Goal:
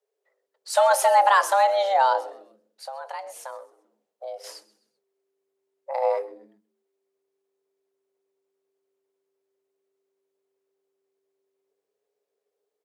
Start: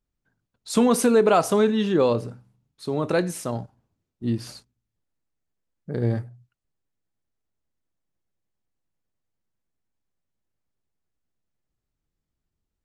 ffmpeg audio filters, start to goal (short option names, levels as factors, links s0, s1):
-filter_complex "[0:a]asettb=1/sr,asplit=3[s0][s1][s2];[s0]atrim=end=2.204[s3];[s1]atrim=start=2.2:end=4.44,asetpts=PTS-STARTPTS,afade=t=in:d=0.004:c=qsin,afade=t=out:st=2.236:d=0.004:c=qsin,acompressor=threshold=0.0141:ratio=3[s4];[s2]atrim=start=4.436[s5];[s3][s4]acrossfade=d=0.004:c1=hsin:c2=qsin[s6];[s6][s5]acrossfade=d=0.004:c1=qsin:c2=hsin,afreqshift=390,asplit=4[s7][s8][s9][s10];[s8]adelay=129,afreqshift=-98,volume=0.0944[s11];[s9]adelay=258,afreqshift=-196,volume=0.0367[s12];[s10]adelay=387,afreqshift=-294,volume=0.0143[s13];[s7][s11][s12][s13]amix=inputs=4:normalize=0"